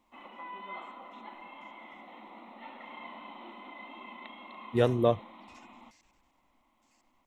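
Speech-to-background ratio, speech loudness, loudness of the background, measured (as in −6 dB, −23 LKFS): 18.5 dB, −28.5 LKFS, −47.0 LKFS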